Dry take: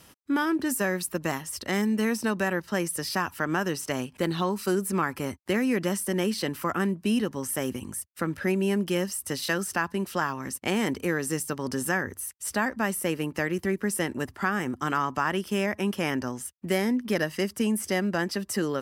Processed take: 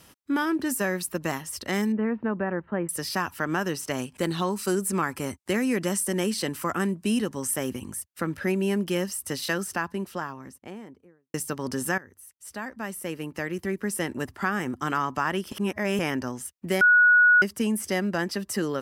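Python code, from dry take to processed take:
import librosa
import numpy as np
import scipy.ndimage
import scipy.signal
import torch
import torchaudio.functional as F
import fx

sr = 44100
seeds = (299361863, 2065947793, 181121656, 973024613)

y = fx.gaussian_blur(x, sr, sigma=4.7, at=(1.92, 2.89))
y = fx.peak_eq(y, sr, hz=8200.0, db=6.5, octaves=0.82, at=(3.98, 7.54))
y = fx.studio_fade_out(y, sr, start_s=9.42, length_s=1.92)
y = fx.edit(y, sr, fx.fade_in_from(start_s=11.98, length_s=2.28, floor_db=-18.5),
    fx.reverse_span(start_s=15.52, length_s=0.47),
    fx.bleep(start_s=16.81, length_s=0.61, hz=1460.0, db=-13.5), tone=tone)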